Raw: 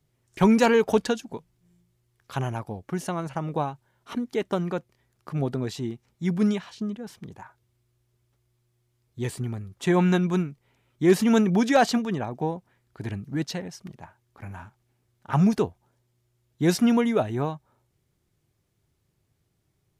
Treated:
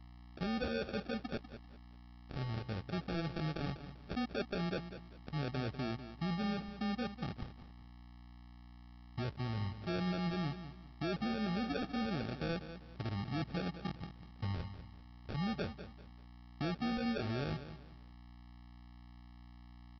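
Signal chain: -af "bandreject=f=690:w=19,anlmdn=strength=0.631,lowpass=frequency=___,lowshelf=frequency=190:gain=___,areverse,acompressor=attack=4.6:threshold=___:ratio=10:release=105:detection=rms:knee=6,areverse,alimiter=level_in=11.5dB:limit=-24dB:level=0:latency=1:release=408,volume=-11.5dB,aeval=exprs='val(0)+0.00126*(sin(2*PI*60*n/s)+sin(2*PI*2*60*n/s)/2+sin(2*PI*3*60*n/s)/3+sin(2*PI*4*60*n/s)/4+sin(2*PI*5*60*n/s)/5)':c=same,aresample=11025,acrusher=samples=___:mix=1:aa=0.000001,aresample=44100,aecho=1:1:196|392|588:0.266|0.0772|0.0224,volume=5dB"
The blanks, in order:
1.6k, 3, -31dB, 11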